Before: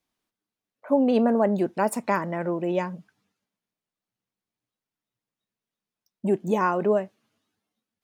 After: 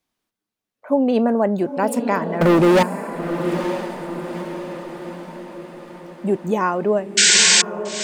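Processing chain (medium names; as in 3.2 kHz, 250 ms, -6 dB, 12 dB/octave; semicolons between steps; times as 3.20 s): 2.41–2.83 s: waveshaping leveller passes 5; 7.17–7.62 s: painted sound noise 1.4–8.4 kHz -16 dBFS; on a send: echo that smears into a reverb 917 ms, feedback 54%, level -8 dB; on the sum: trim +3 dB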